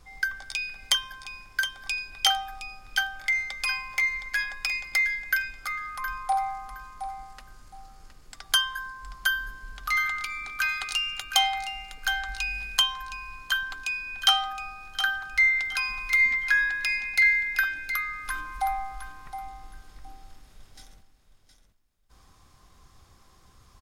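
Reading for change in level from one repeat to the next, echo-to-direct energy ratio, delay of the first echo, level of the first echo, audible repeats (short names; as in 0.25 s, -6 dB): -13.0 dB, -10.0 dB, 0.716 s, -10.0 dB, 2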